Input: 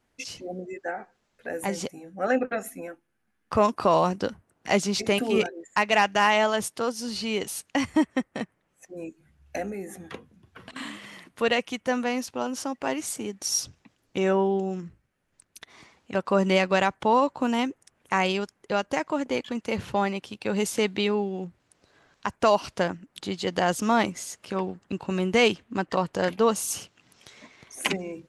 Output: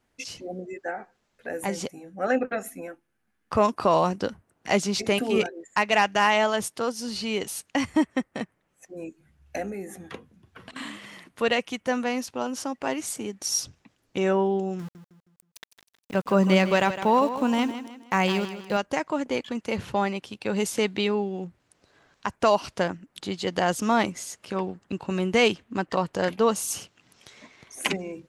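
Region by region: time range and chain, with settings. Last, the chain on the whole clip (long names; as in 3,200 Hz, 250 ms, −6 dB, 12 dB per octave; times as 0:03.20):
0:14.79–0:18.77: dynamic equaliser 160 Hz, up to +6 dB, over −41 dBFS, Q 1.7 + centre clipping without the shift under −40.5 dBFS + repeating echo 158 ms, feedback 38%, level −11.5 dB
whole clip: no processing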